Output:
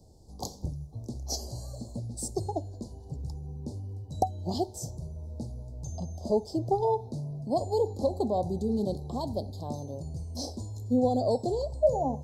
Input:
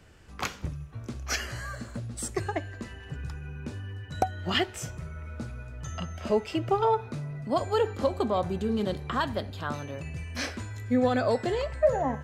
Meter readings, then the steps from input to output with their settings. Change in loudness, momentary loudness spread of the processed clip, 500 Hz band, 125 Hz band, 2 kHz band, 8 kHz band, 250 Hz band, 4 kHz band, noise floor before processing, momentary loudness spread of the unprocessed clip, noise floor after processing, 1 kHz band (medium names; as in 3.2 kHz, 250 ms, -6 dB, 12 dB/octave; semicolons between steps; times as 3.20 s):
-1.5 dB, 13 LU, -1.0 dB, 0.0 dB, under -40 dB, -1.0 dB, -0.5 dB, -7.5 dB, -45 dBFS, 14 LU, -47 dBFS, -2.5 dB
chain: elliptic band-stop 820–4400 Hz, stop band 40 dB